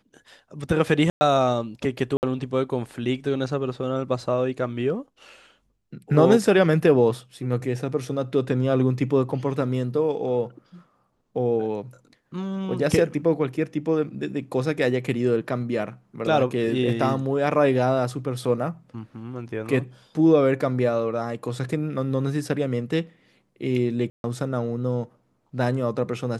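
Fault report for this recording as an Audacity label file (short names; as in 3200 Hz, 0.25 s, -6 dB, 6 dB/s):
1.100000	1.210000	gap 0.11 s
2.170000	2.230000	gap 59 ms
24.100000	24.240000	gap 0.141 s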